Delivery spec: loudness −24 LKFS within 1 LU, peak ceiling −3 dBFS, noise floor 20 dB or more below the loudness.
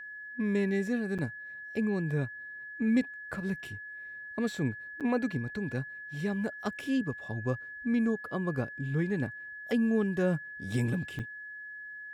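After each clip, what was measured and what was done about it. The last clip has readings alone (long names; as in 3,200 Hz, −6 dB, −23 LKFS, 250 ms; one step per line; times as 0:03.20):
number of dropouts 3; longest dropout 7.2 ms; interfering tone 1,700 Hz; level of the tone −41 dBFS; integrated loudness −33.0 LKFS; sample peak −16.0 dBFS; target loudness −24.0 LKFS
→ repair the gap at 0:01.18/0:05.00/0:11.19, 7.2 ms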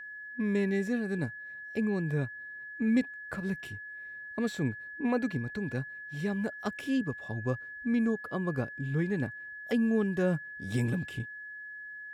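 number of dropouts 0; interfering tone 1,700 Hz; level of the tone −41 dBFS
→ notch filter 1,700 Hz, Q 30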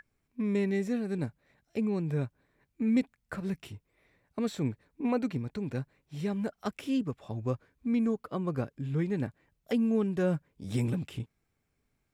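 interfering tone none found; integrated loudness −32.5 LKFS; sample peak −16.5 dBFS; target loudness −24.0 LKFS
→ level +8.5 dB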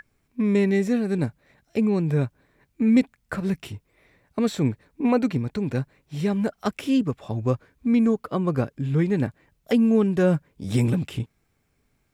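integrated loudness −24.0 LKFS; sample peak −8.0 dBFS; background noise floor −71 dBFS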